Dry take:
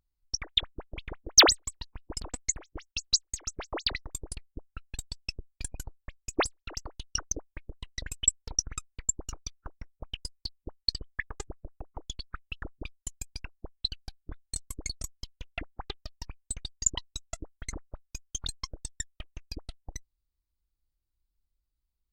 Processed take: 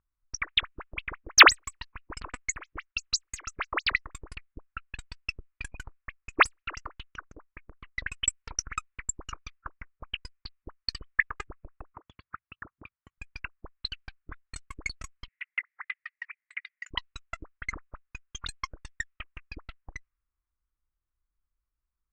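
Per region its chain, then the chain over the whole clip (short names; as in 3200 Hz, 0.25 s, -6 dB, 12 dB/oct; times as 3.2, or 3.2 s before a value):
7.04–7.84 compressor 8:1, threshold -36 dBFS + Doppler distortion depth 0.48 ms
11.94–13.18 HPF 83 Hz + notch 510 Hz, Q 6.7 + compressor, threshold -40 dBFS
15.28–16.91 resonant high-pass 2000 Hz, resonance Q 9.5 + compressor 10:1, threshold -33 dBFS
whole clip: low-pass opened by the level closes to 1000 Hz, open at -28 dBFS; band shelf 1700 Hz +15 dB; gain -3.5 dB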